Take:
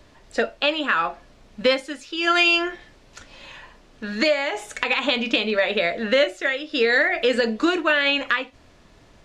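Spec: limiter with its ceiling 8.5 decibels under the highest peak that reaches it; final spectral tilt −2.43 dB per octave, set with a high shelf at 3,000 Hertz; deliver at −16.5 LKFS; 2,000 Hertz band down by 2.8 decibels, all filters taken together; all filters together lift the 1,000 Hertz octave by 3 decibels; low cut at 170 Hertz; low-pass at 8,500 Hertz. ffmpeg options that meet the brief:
ffmpeg -i in.wav -af "highpass=170,lowpass=8500,equalizer=frequency=1000:width_type=o:gain=6.5,equalizer=frequency=2000:width_type=o:gain=-9,highshelf=frequency=3000:gain=8,volume=6.5dB,alimiter=limit=-4.5dB:level=0:latency=1" out.wav

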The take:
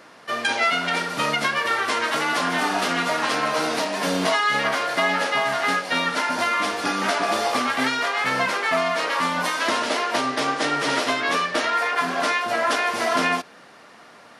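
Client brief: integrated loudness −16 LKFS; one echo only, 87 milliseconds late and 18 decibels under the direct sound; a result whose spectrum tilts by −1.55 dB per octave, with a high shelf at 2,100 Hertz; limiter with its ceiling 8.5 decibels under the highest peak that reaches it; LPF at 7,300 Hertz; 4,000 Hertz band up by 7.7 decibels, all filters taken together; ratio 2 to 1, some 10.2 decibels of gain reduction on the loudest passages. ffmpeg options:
ffmpeg -i in.wav -af "lowpass=7300,highshelf=frequency=2100:gain=5,equalizer=frequency=4000:width_type=o:gain=5.5,acompressor=threshold=-34dB:ratio=2,alimiter=limit=-22dB:level=0:latency=1,aecho=1:1:87:0.126,volume=14dB" out.wav

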